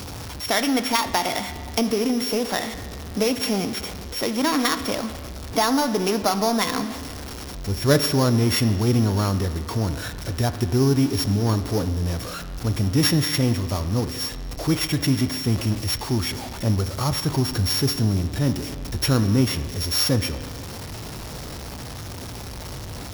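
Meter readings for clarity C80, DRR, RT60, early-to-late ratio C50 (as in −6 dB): 12.5 dB, 10.0 dB, 1.9 s, 11.5 dB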